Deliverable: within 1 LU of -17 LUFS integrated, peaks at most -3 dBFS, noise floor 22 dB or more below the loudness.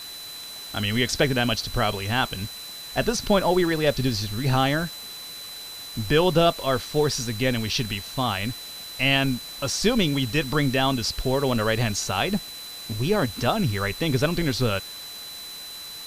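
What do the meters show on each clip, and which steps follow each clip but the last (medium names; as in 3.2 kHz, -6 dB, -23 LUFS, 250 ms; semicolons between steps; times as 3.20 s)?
steady tone 4 kHz; tone level -37 dBFS; noise floor -38 dBFS; noise floor target -46 dBFS; loudness -24.0 LUFS; peak level -7.5 dBFS; loudness target -17.0 LUFS
-> band-stop 4 kHz, Q 30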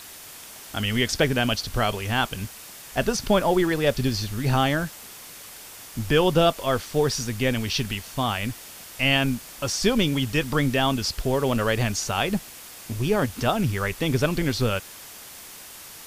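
steady tone not found; noise floor -43 dBFS; noise floor target -46 dBFS
-> noise reduction 6 dB, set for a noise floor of -43 dBFS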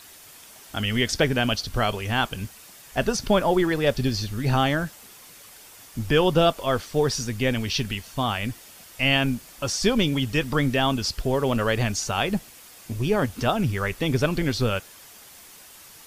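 noise floor -47 dBFS; loudness -24.0 LUFS; peak level -7.0 dBFS; loudness target -17.0 LUFS
-> trim +7 dB; peak limiter -3 dBFS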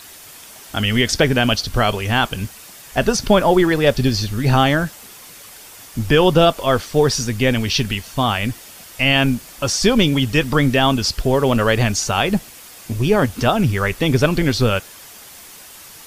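loudness -17.5 LUFS; peak level -3.0 dBFS; noise floor -40 dBFS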